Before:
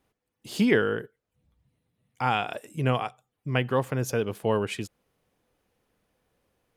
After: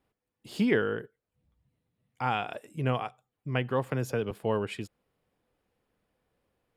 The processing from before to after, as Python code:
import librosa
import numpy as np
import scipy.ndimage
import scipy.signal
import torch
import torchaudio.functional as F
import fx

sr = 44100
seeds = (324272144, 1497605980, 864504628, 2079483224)

y = fx.high_shelf(x, sr, hz=4500.0, db=-6.0)
y = fx.notch(y, sr, hz=6100.0, q=10.0)
y = fx.band_squash(y, sr, depth_pct=70, at=(3.91, 4.31))
y = F.gain(torch.from_numpy(y), -3.5).numpy()